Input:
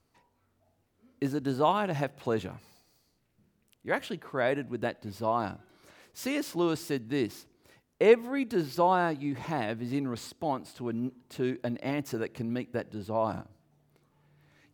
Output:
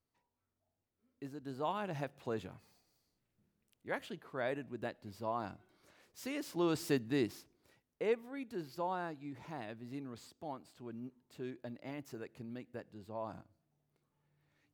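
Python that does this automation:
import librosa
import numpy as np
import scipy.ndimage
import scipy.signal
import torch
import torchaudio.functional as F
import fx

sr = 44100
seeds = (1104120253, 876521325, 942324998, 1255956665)

y = fx.gain(x, sr, db=fx.line((1.36, -16.0), (1.88, -9.5), (6.38, -9.5), (6.92, -1.0), (8.06, -13.5)))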